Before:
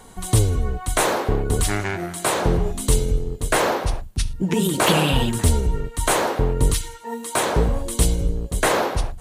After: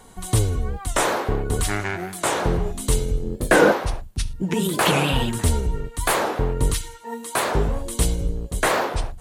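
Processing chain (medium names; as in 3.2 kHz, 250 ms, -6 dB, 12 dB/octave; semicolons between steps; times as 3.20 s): dynamic bell 1.5 kHz, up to +3 dB, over -33 dBFS, Q 0.77; 3.22–3.71 s: small resonant body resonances 210/330/520/1600 Hz, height 9 dB -> 14 dB; warped record 45 rpm, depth 160 cents; trim -2.5 dB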